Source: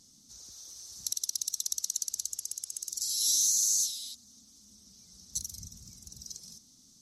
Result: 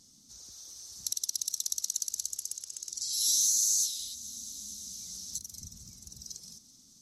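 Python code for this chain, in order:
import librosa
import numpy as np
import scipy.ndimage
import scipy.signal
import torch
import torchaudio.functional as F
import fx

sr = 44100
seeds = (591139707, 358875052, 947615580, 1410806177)

y = fx.lowpass(x, sr, hz=7500.0, slope=12, at=(2.57, 3.13))
y = fx.echo_thinned(y, sr, ms=221, feedback_pct=72, hz=420.0, wet_db=-19.0)
y = fx.band_squash(y, sr, depth_pct=100, at=(3.99, 5.62))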